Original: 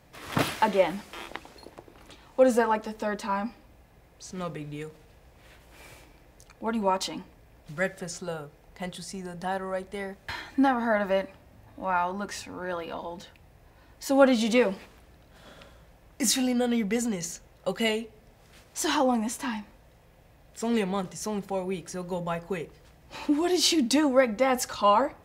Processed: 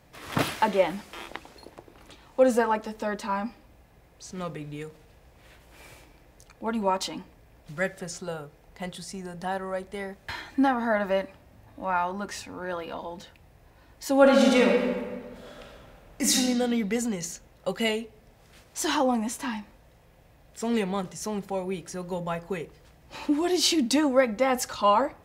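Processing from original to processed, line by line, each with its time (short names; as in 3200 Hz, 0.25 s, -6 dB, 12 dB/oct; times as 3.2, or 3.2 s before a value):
14.2–16.34 reverb throw, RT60 1.6 s, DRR -1 dB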